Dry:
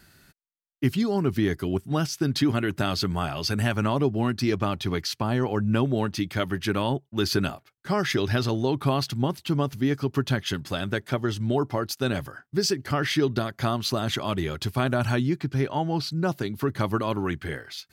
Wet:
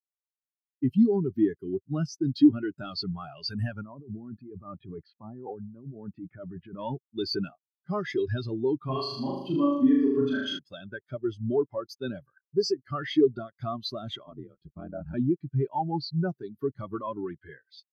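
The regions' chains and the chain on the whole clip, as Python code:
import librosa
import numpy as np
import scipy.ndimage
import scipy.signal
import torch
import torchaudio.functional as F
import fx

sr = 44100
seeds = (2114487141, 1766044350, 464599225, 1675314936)

y = fx.chain(x, sr, fx.lowpass(hz=1600.0, slope=12),
    fx.over_compress(threshold_db=-30.0, ratio=-1.0), at=(3.81, 6.79))
y = fx.chain(y, sr, fx.low_shelf(hz=130.0, db=-9.5),
    fx.room_flutter(wall_m=6.6, rt60_s=1.4), at=(8.84, 10.59))
y = fx.chain(y, sr, fx.high_shelf(hz=2100.0, db=-12.0),
    fx.ring_mod(carrier_hz=44.0), at=(14.23, 15.14))
y = fx.tilt_eq(y, sr, slope=2.0)
y = fx.leveller(y, sr, passes=3)
y = fx.spectral_expand(y, sr, expansion=2.5)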